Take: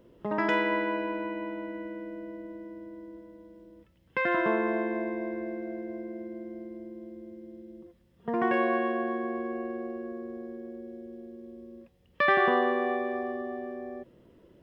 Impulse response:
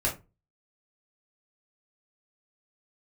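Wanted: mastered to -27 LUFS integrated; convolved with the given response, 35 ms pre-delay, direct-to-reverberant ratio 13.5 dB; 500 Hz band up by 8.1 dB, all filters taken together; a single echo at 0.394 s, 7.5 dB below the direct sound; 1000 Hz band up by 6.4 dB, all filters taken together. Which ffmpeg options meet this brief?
-filter_complex "[0:a]equalizer=f=500:t=o:g=9,equalizer=f=1k:t=o:g=5,aecho=1:1:394:0.422,asplit=2[a][b];[1:a]atrim=start_sample=2205,adelay=35[c];[b][c]afir=irnorm=-1:irlink=0,volume=-22dB[d];[a][d]amix=inputs=2:normalize=0,volume=-4dB"

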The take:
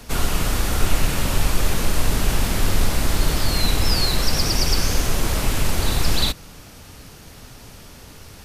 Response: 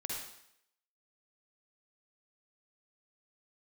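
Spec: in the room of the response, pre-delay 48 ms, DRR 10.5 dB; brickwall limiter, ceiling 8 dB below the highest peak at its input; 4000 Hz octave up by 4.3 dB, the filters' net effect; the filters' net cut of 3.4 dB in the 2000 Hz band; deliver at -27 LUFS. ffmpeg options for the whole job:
-filter_complex "[0:a]equalizer=f=2k:t=o:g=-6.5,equalizer=f=4k:t=o:g=6.5,alimiter=limit=-12dB:level=0:latency=1,asplit=2[a][b];[1:a]atrim=start_sample=2205,adelay=48[c];[b][c]afir=irnorm=-1:irlink=0,volume=-11.5dB[d];[a][d]amix=inputs=2:normalize=0,volume=-4dB"

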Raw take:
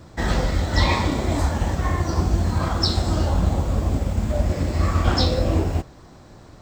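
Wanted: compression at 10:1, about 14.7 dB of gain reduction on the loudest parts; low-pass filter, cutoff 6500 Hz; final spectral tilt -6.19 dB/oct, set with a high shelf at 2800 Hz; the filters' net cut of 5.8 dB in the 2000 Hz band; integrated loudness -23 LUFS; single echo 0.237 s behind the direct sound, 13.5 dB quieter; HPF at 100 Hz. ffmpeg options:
-af "highpass=100,lowpass=6.5k,equalizer=f=2k:t=o:g=-4.5,highshelf=f=2.8k:g=-6.5,acompressor=threshold=-34dB:ratio=10,aecho=1:1:237:0.211,volume=16dB"

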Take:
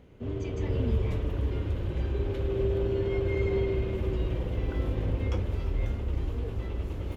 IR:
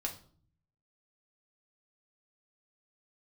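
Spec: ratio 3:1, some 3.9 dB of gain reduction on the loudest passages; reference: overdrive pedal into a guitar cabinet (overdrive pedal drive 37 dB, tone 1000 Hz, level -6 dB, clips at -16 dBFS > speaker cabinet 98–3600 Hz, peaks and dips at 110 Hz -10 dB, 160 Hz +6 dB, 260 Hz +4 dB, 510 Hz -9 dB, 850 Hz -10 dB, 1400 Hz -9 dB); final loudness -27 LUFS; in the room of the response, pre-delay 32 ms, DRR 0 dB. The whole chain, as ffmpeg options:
-filter_complex "[0:a]acompressor=threshold=-28dB:ratio=3,asplit=2[a][b];[1:a]atrim=start_sample=2205,adelay=32[c];[b][c]afir=irnorm=-1:irlink=0,volume=-1dB[d];[a][d]amix=inputs=2:normalize=0,asplit=2[e][f];[f]highpass=f=720:p=1,volume=37dB,asoftclip=type=tanh:threshold=-16dB[g];[e][g]amix=inputs=2:normalize=0,lowpass=f=1k:p=1,volume=-6dB,highpass=98,equalizer=f=110:t=q:w=4:g=-10,equalizer=f=160:t=q:w=4:g=6,equalizer=f=260:t=q:w=4:g=4,equalizer=f=510:t=q:w=4:g=-9,equalizer=f=850:t=q:w=4:g=-10,equalizer=f=1.4k:t=q:w=4:g=-9,lowpass=f=3.6k:w=0.5412,lowpass=f=3.6k:w=1.3066,volume=-0.5dB"

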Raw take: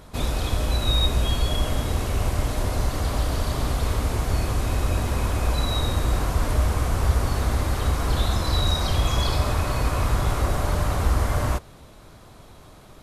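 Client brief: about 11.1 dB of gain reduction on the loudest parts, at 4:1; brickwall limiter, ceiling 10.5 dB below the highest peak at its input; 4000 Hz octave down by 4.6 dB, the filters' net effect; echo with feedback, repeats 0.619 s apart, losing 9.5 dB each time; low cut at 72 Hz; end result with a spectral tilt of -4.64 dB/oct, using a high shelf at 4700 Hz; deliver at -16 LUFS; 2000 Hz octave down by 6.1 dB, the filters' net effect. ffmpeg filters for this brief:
-af "highpass=72,equalizer=f=2k:t=o:g=-8,equalizer=f=4k:t=o:g=-5.5,highshelf=f=4.7k:g=5.5,acompressor=threshold=-33dB:ratio=4,alimiter=level_in=8.5dB:limit=-24dB:level=0:latency=1,volume=-8.5dB,aecho=1:1:619|1238|1857|2476:0.335|0.111|0.0365|0.012,volume=25.5dB"

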